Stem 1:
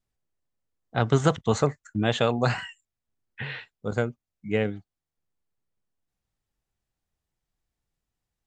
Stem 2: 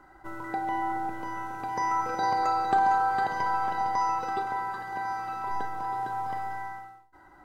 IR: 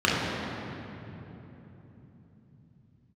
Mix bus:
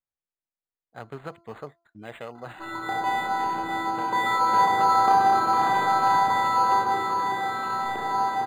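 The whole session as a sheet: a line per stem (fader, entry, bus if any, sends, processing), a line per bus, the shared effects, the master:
-11.5 dB, 0.00 s, no send, de-hum 339.6 Hz, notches 4
0.0 dB, 2.35 s, send -10 dB, none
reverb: on, RT60 3.5 s, pre-delay 3 ms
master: bass shelf 290 Hz -11.5 dB; decimation joined by straight lines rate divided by 8×

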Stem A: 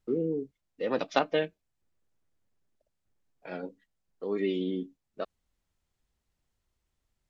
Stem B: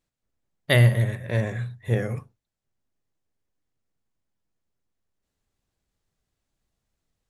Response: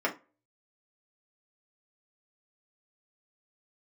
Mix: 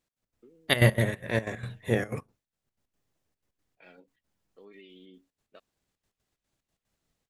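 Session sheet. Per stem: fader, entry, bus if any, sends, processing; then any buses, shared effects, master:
-17.5 dB, 0.35 s, no send, peaking EQ 2.7 kHz +12.5 dB 1.6 oct; compression 6:1, threshold -31 dBFS, peak gain reduction 15 dB; auto duck -12 dB, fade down 0.35 s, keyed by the second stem
-2.5 dB, 0.00 s, no send, spectral peaks clipped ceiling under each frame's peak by 12 dB; trance gate "x.x.xxxxx.x.xx.x" 184 bpm -12 dB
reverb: none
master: none

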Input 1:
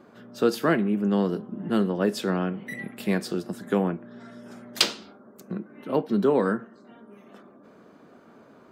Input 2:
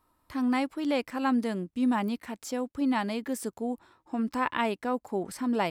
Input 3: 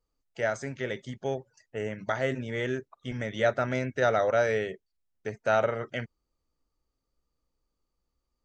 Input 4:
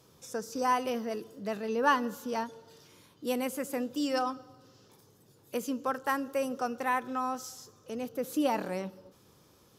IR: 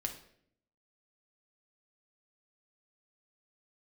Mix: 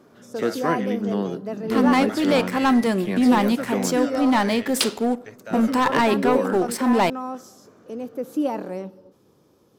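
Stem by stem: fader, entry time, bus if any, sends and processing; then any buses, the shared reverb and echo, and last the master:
-2.0 dB, 0.00 s, no send, none
-1.5 dB, 1.40 s, send -8.5 dB, bass shelf 160 Hz -8.5 dB; waveshaping leveller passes 3
-5.5 dB, 0.00 s, no send, tilt shelf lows -4.5 dB; peak limiter -19.5 dBFS, peak gain reduction 8 dB
-5.5 dB, 0.00 s, no send, peaking EQ 340 Hz +11.5 dB 2.9 oct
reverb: on, RT60 0.65 s, pre-delay 5 ms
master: none

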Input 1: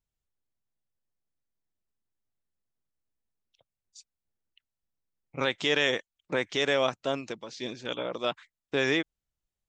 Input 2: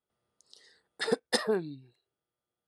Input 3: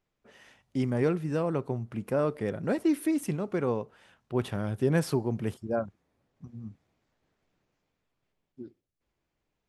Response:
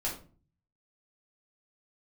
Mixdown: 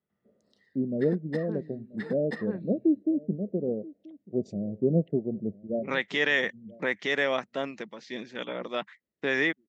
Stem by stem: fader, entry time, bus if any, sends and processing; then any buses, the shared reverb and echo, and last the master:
-2.0 dB, 0.50 s, no send, no echo send, treble shelf 5.6 kHz -12 dB
-3.0 dB, 0.00 s, no send, echo send -9 dB, tone controls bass +12 dB, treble -14 dB; auto duck -12 dB, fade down 0.30 s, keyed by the third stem
+2.0 dB, 0.00 s, no send, echo send -21.5 dB, steep low-pass 660 Hz 72 dB/octave; upward expansion 1.5:1, over -39 dBFS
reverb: none
echo: delay 983 ms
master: cabinet simulation 110–8500 Hz, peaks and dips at 120 Hz -7 dB, 200 Hz +8 dB, 1.9 kHz +10 dB

